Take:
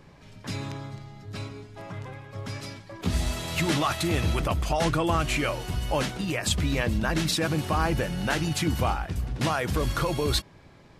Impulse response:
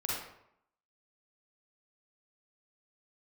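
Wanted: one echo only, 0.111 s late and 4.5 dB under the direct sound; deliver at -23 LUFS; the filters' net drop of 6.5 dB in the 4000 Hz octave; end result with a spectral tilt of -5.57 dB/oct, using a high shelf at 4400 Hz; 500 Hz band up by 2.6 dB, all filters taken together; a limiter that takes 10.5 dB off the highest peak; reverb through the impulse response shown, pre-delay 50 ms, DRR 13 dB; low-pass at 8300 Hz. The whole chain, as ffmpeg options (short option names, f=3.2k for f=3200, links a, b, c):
-filter_complex "[0:a]lowpass=8.3k,equalizer=f=500:t=o:g=3.5,equalizer=f=4k:t=o:g=-4,highshelf=f=4.4k:g=-8,alimiter=limit=-22dB:level=0:latency=1,aecho=1:1:111:0.596,asplit=2[a][b];[1:a]atrim=start_sample=2205,adelay=50[c];[b][c]afir=irnorm=-1:irlink=0,volume=-18dB[d];[a][d]amix=inputs=2:normalize=0,volume=8dB"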